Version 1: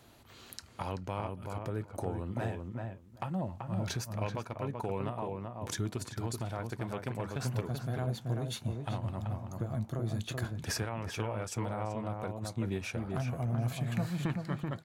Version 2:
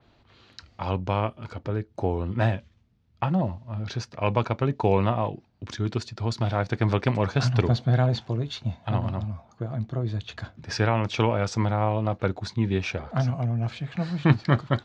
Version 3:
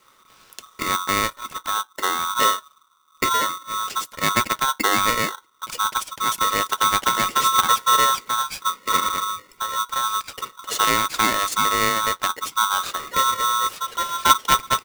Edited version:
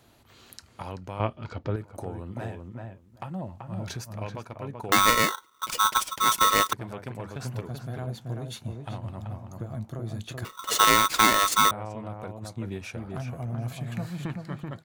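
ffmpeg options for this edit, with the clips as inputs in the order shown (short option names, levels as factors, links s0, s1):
-filter_complex "[2:a]asplit=2[s0][s1];[0:a]asplit=4[s2][s3][s4][s5];[s2]atrim=end=1.202[s6];[1:a]atrim=start=1.198:end=1.762[s7];[s3]atrim=start=1.758:end=4.922[s8];[s0]atrim=start=4.918:end=6.732[s9];[s4]atrim=start=6.728:end=10.452[s10];[s1]atrim=start=10.448:end=11.712[s11];[s5]atrim=start=11.708[s12];[s6][s7]acrossfade=d=0.004:c1=hsin:c2=hsin[s13];[s13][s8]acrossfade=d=0.004:c1=hsin:c2=hsin[s14];[s14][s9]acrossfade=d=0.004:c1=hsin:c2=hsin[s15];[s15][s10]acrossfade=d=0.004:c1=hsin:c2=hsin[s16];[s16][s11]acrossfade=d=0.004:c1=hsin:c2=hsin[s17];[s17][s12]acrossfade=d=0.004:c1=hsin:c2=hsin"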